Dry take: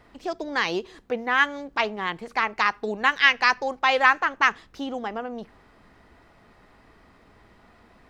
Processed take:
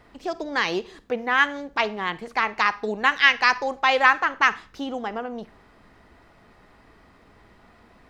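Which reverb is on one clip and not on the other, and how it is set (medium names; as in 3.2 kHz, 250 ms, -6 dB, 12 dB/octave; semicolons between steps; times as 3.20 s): Schroeder reverb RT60 0.39 s, DRR 17.5 dB; trim +1 dB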